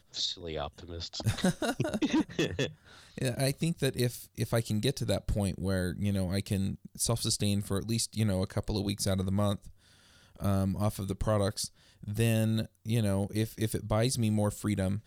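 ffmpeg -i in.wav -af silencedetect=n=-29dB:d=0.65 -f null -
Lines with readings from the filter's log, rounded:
silence_start: 9.55
silence_end: 10.42 | silence_duration: 0.87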